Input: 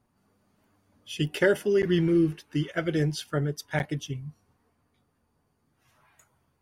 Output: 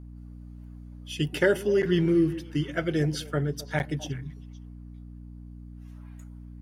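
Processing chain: hum 60 Hz, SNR 14 dB; delay with a stepping band-pass 0.129 s, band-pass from 250 Hz, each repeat 1.4 oct, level -11 dB

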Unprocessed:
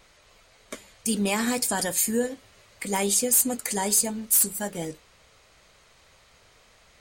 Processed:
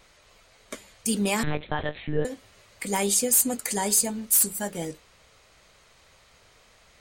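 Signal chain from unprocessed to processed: 1.43–2.25 monotone LPC vocoder at 8 kHz 150 Hz

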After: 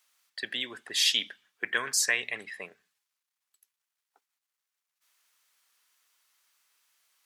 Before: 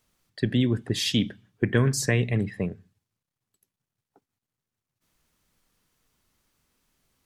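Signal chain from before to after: HPF 1200 Hz 12 dB/oct; gain +3.5 dB

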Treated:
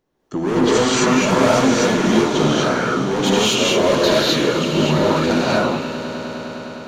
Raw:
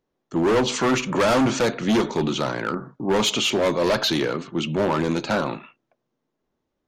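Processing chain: compressor, threshold -26 dBFS, peak gain reduction 9 dB; swelling echo 0.102 s, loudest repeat 5, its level -17 dB; non-linear reverb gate 0.28 s rising, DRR -7 dB; gain +4.5 dB

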